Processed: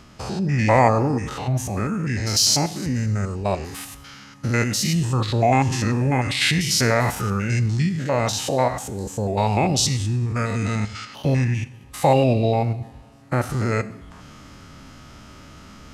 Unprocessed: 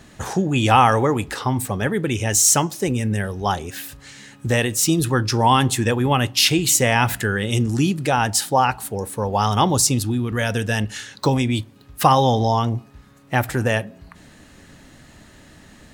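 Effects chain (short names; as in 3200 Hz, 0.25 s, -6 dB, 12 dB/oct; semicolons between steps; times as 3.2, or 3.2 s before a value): stepped spectrum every 0.1 s; reverse; upward compressor, threshold -36 dBFS; reverse; two-slope reverb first 0.76 s, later 2.8 s, from -18 dB, DRR 13 dB; formant shift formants -5 st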